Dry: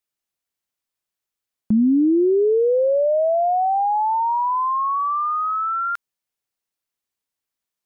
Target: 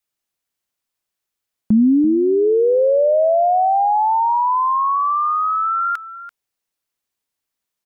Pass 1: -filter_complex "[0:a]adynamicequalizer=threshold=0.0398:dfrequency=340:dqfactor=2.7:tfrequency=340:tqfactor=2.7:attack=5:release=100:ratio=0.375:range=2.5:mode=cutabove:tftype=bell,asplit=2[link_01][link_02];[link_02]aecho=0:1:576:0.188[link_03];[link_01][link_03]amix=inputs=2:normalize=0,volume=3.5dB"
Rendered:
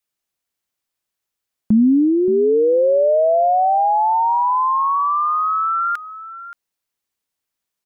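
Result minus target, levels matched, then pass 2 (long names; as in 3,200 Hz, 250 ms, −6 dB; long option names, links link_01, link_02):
echo 238 ms late
-filter_complex "[0:a]adynamicequalizer=threshold=0.0398:dfrequency=340:dqfactor=2.7:tfrequency=340:tqfactor=2.7:attack=5:release=100:ratio=0.375:range=2.5:mode=cutabove:tftype=bell,asplit=2[link_01][link_02];[link_02]aecho=0:1:338:0.188[link_03];[link_01][link_03]amix=inputs=2:normalize=0,volume=3.5dB"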